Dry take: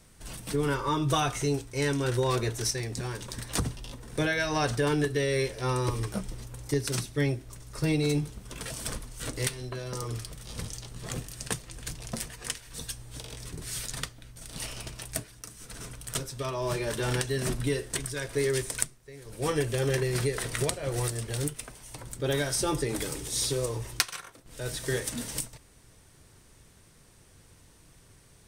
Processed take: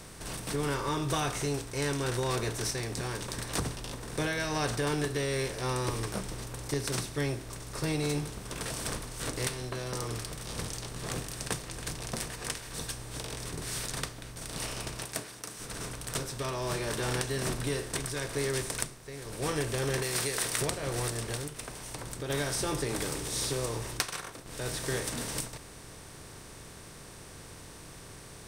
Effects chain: per-bin compression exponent 0.6; 15.05–15.6 HPF 220 Hz 6 dB/oct; 20.02–20.61 tilt +2 dB/oct; 21.35–22.3 compressor, threshold -27 dBFS, peak gain reduction 6.5 dB; gain -7 dB

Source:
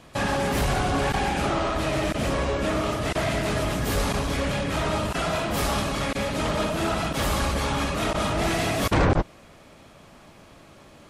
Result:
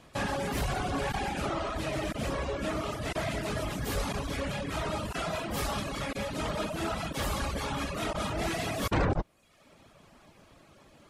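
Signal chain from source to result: reverb removal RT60 0.77 s; gain -5.5 dB

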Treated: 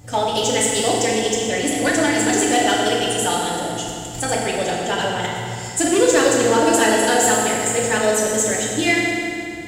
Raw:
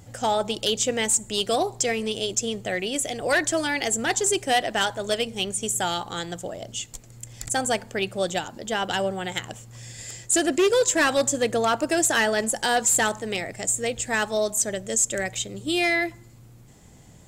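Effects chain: time stretch by phase-locked vocoder 0.56×; in parallel at -9 dB: soft clip -25.5 dBFS, distortion -8 dB; on the sum: FDN reverb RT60 2.6 s, low-frequency decay 1.45×, high-frequency decay 0.85×, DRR -4 dB

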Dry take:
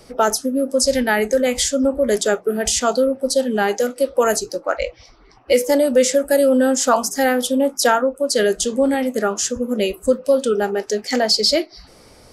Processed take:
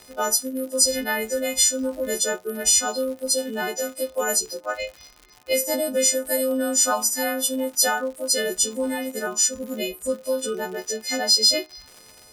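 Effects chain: frequency quantiser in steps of 3 st; crackle 140/s -25 dBFS; gain -9 dB

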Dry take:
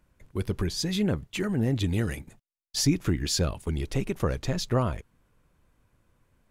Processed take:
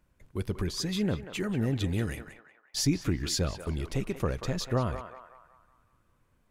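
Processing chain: narrowing echo 0.186 s, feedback 51%, band-pass 1200 Hz, level -7 dB; gain -3 dB

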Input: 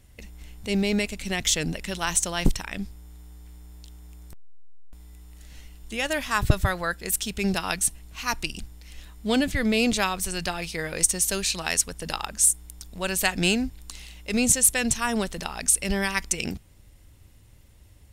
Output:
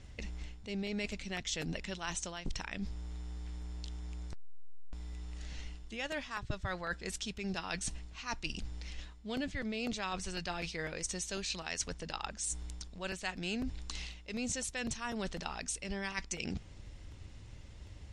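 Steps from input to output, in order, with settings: LPF 6600 Hz 24 dB/oct; reverse; compressor 5:1, threshold -40 dBFS, peak gain reduction 25 dB; reverse; crackling interface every 0.25 s, samples 64, repeat, from 0.37; gain +3.5 dB; MP3 56 kbps 32000 Hz

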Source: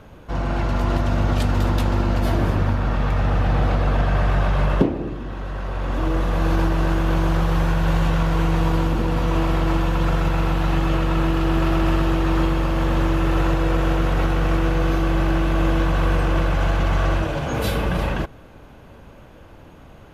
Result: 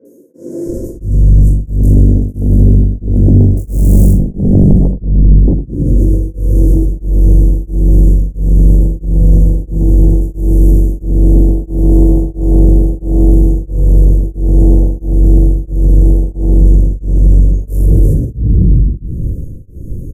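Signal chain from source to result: 3.51–4.06 half-waves squared off; inverse Chebyshev band-stop 740–4300 Hz, stop band 40 dB; bell 65 Hz +5 dB 2.2 oct; three bands offset in time mids, highs, lows 50/660 ms, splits 330/2700 Hz; shoebox room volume 140 m³, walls mixed, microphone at 2.1 m; sine folder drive 13 dB, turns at 12.5 dBFS; 10.21–11.03 high shelf 4000 Hz +6.5 dB; maximiser -6.5 dB; beating tremolo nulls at 1.5 Hz

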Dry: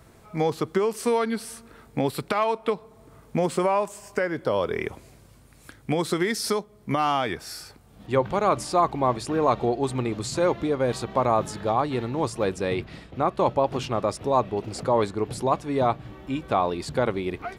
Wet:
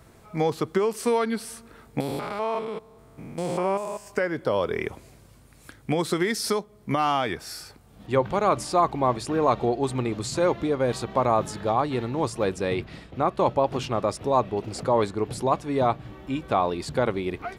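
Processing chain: 2–4.07 stepped spectrum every 0.2 s

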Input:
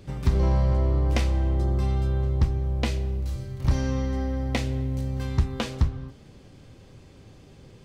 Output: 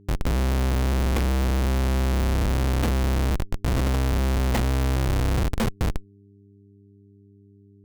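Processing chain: Schmitt trigger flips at -27 dBFS; buzz 100 Hz, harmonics 4, -56 dBFS -4 dB/oct; gain +3.5 dB

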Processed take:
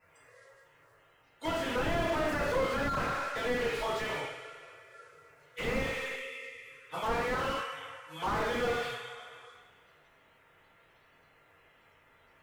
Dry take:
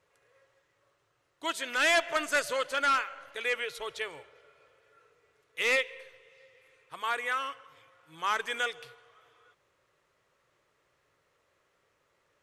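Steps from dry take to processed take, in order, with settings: bin magnitudes rounded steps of 30 dB; two-slope reverb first 0.54 s, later 2 s, from -18 dB, DRR -9.5 dB; slew limiter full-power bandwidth 33 Hz

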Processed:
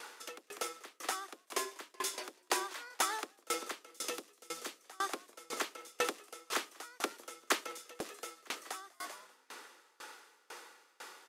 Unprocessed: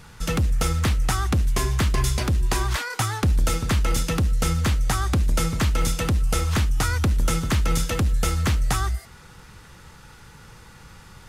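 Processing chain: 3.85–4.8 bell 1200 Hz -6 dB 2.5 oct; on a send: frequency-shifting echo 0.195 s, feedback 43%, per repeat -76 Hz, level -14 dB; on the sum: compressor 4:1, threshold -27 dBFS, peak gain reduction 9.5 dB; steep high-pass 330 Hz 36 dB/oct; dB-ramp tremolo decaying 2 Hz, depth 28 dB; gain +4 dB

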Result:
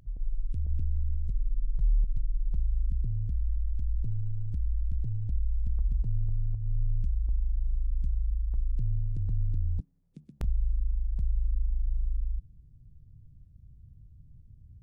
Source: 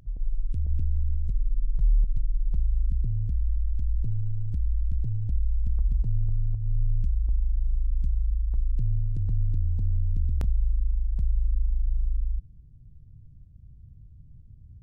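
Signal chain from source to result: 9.8–10.41 elliptic high-pass 150 Hz, stop band 40 dB; gain -3.5 dB

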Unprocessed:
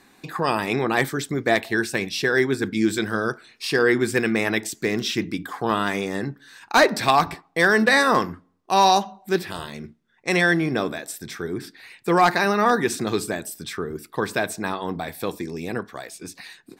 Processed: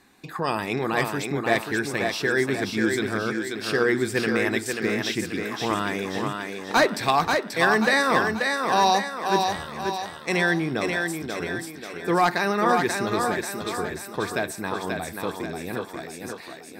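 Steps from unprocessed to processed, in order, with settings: bell 75 Hz +5 dB 0.77 oct; on a send: thinning echo 0.535 s, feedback 49%, high-pass 200 Hz, level -4 dB; on the sum: gain -3.5 dB

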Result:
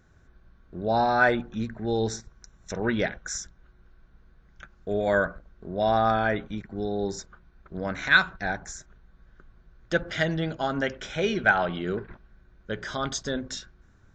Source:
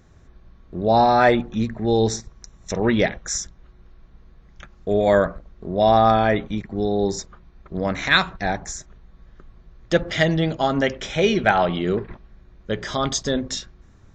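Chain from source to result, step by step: bell 1500 Hz +12.5 dB 0.21 oct; gain -7.5 dB

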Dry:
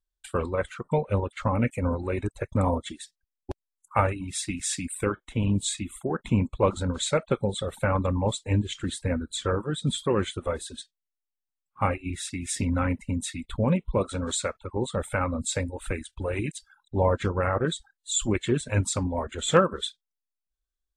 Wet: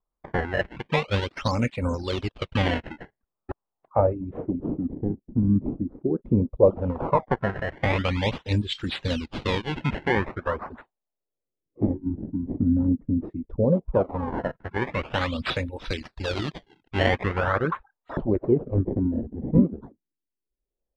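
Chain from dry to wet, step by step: decimation with a swept rate 21×, swing 160% 0.43 Hz; LFO low-pass sine 0.14 Hz 260–4100 Hz

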